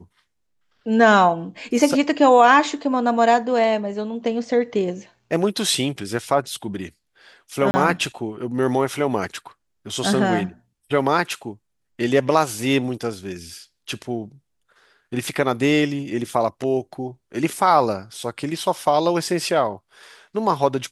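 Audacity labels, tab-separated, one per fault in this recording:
7.710000	7.740000	drop-out 30 ms

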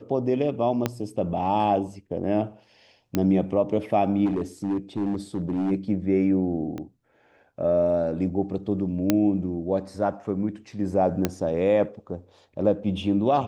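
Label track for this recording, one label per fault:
0.860000	0.860000	click −9 dBFS
3.150000	3.150000	click −10 dBFS
4.250000	5.720000	clipping −21.5 dBFS
6.780000	6.780000	click −22 dBFS
9.100000	9.100000	click −6 dBFS
11.250000	11.250000	click −8 dBFS

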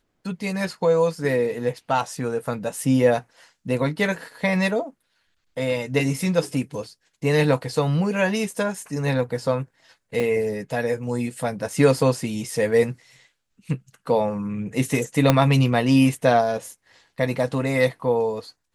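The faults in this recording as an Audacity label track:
10.200000	10.200000	drop-out 2.2 ms
15.300000	15.300000	click −2 dBFS

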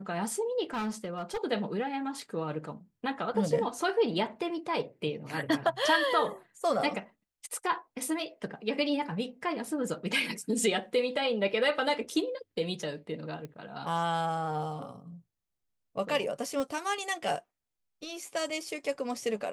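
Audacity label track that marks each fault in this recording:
0.730000	1.380000	clipping −29 dBFS
13.450000	13.450000	click −28 dBFS
16.600000	16.600000	click −21 dBFS

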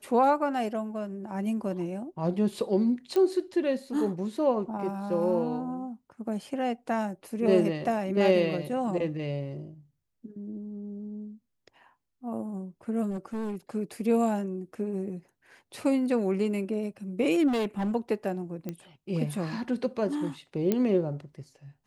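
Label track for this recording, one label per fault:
3.160000	3.160000	click −17 dBFS
13.100000	13.560000	clipping −30 dBFS
17.470000	17.920000	clipping −25 dBFS
18.690000	18.690000	click −21 dBFS
20.720000	20.720000	click −13 dBFS

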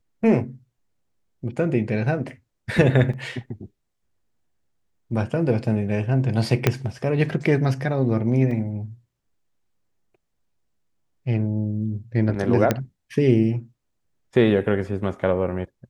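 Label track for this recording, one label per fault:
3.130000	3.130000	drop-out 4.8 ms
6.670000	6.670000	click −3 dBFS
8.510000	8.510000	drop-out 3.7 ms
12.710000	12.710000	click −6 dBFS

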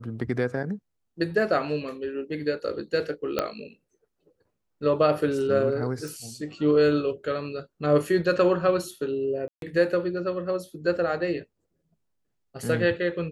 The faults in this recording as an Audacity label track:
3.390000	3.390000	click −10 dBFS
6.080000	6.080000	click
9.480000	9.620000	drop-out 142 ms

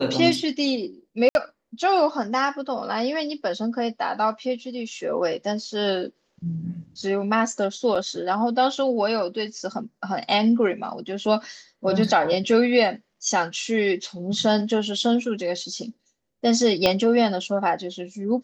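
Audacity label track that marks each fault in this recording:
1.290000	1.350000	drop-out 61 ms
7.950000	7.960000	drop-out 5.7 ms
16.860000	16.860000	click −6 dBFS

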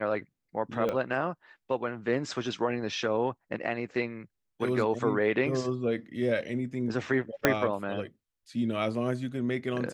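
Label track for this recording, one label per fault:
0.890000	0.890000	click −18 dBFS
7.450000	7.450000	click −6 dBFS

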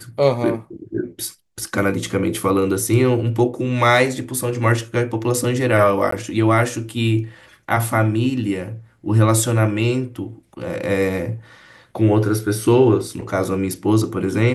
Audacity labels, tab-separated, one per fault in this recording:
6.110000	6.120000	drop-out 14 ms

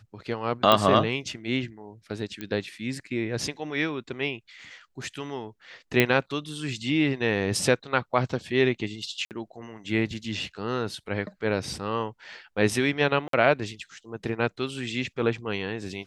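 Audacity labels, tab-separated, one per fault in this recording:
0.720000	0.720000	click −6 dBFS
2.410000	2.410000	click −19 dBFS
6.000000	6.000000	click −6 dBFS
9.250000	9.310000	drop-out 58 ms
13.280000	13.330000	drop-out 53 ms

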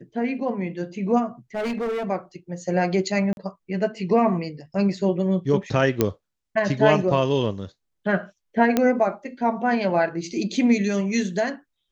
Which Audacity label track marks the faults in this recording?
1.550000	2.100000	clipping −23.5 dBFS
3.330000	3.370000	drop-out 41 ms
6.010000	6.010000	click −5 dBFS
8.770000	8.770000	click −6 dBFS

